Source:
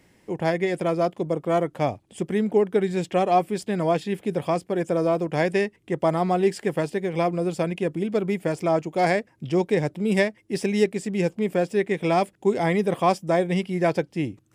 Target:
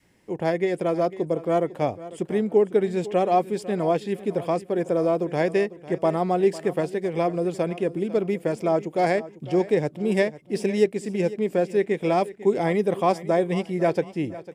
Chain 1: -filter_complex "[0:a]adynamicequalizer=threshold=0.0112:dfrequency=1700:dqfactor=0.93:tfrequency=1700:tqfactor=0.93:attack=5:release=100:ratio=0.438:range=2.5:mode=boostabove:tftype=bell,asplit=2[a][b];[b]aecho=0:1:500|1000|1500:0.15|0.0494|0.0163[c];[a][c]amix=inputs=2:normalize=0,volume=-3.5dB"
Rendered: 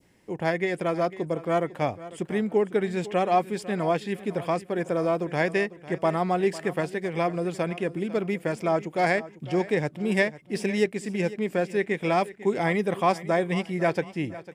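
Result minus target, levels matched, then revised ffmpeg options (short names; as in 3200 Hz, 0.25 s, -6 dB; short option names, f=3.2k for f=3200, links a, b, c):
2000 Hz band +6.5 dB
-filter_complex "[0:a]adynamicequalizer=threshold=0.0112:dfrequency=440:dqfactor=0.93:tfrequency=440:tqfactor=0.93:attack=5:release=100:ratio=0.438:range=2.5:mode=boostabove:tftype=bell,asplit=2[a][b];[b]aecho=0:1:500|1000|1500:0.15|0.0494|0.0163[c];[a][c]amix=inputs=2:normalize=0,volume=-3.5dB"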